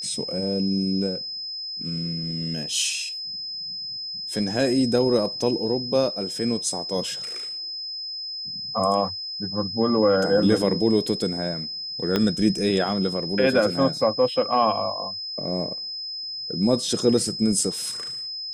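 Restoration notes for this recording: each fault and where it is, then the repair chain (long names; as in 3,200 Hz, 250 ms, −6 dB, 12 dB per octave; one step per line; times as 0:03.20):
whistle 5,100 Hz −30 dBFS
0:12.16: click −8 dBFS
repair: click removal
notch filter 5,100 Hz, Q 30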